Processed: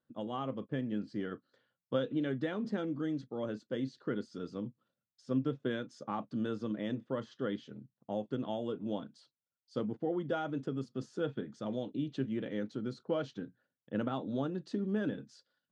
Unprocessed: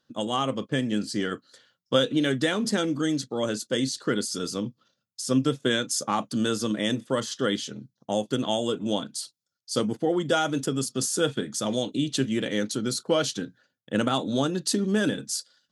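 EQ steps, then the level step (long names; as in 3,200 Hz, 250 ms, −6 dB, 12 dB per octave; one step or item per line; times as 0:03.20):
head-to-tape spacing loss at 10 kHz 38 dB
−8.0 dB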